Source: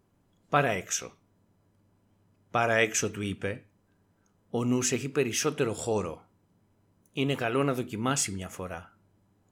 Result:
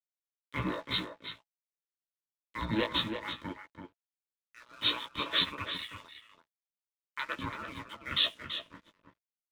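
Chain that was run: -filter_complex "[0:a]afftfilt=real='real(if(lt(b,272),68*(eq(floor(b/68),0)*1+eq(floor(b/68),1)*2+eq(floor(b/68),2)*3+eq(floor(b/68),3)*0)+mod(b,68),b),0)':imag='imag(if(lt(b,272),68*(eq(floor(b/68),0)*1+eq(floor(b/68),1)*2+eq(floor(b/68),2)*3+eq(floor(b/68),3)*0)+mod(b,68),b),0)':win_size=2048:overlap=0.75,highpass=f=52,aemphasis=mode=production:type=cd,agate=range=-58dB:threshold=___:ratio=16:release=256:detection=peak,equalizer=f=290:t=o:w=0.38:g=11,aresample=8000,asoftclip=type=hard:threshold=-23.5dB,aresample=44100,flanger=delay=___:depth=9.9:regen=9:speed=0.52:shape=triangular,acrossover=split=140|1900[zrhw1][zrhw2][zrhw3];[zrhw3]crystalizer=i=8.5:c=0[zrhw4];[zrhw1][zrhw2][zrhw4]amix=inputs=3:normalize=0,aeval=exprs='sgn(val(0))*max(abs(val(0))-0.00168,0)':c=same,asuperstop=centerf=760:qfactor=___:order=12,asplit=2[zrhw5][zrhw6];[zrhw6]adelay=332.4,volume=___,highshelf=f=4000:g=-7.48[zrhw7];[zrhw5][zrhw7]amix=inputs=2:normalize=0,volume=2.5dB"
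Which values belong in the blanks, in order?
-51dB, 8.6, 5.3, -7dB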